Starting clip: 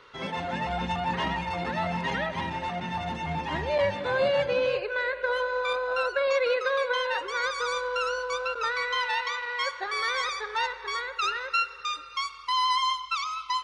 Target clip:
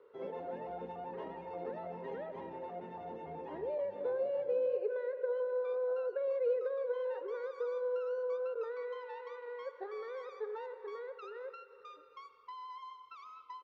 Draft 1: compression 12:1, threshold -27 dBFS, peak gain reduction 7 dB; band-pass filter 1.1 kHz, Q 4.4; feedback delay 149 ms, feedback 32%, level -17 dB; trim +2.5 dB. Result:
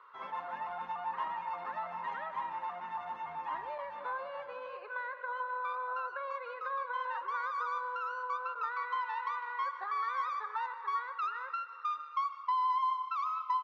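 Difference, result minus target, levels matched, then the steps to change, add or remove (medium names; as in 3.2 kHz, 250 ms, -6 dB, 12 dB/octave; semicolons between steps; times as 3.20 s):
500 Hz band -14.5 dB; echo-to-direct +6.5 dB
change: band-pass filter 450 Hz, Q 4.4; change: feedback delay 149 ms, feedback 32%, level -23.5 dB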